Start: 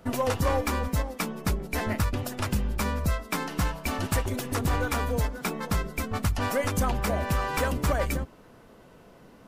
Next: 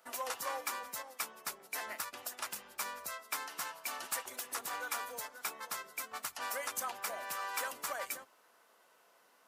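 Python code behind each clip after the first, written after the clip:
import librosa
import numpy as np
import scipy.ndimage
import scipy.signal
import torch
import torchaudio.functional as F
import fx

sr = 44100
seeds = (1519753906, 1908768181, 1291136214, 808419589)

y = scipy.signal.sosfilt(scipy.signal.butter(2, 1200.0, 'highpass', fs=sr, output='sos'), x)
y = fx.peak_eq(y, sr, hz=2600.0, db=-7.0, octaves=2.4)
y = y * 10.0 ** (-1.0 / 20.0)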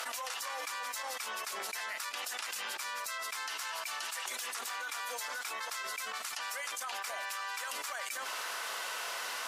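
y = fx.bandpass_q(x, sr, hz=3800.0, q=0.52)
y = fx.env_flatten(y, sr, amount_pct=100)
y = y * 10.0 ** (-2.0 / 20.0)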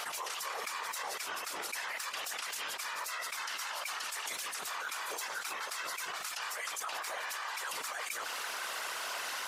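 y = fx.whisperise(x, sr, seeds[0])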